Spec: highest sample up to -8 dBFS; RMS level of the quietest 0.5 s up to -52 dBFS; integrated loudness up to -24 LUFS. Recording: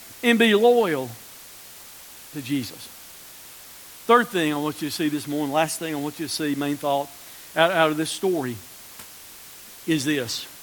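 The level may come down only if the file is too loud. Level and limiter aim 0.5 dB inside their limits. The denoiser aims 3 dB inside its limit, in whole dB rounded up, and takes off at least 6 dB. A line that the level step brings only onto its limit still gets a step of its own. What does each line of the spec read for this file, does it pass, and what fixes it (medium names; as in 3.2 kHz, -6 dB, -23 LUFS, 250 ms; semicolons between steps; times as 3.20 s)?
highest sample -2.5 dBFS: fail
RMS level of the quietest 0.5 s -44 dBFS: fail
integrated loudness -22.5 LUFS: fail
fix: noise reduction 9 dB, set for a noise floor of -44 dBFS; trim -2 dB; peak limiter -8.5 dBFS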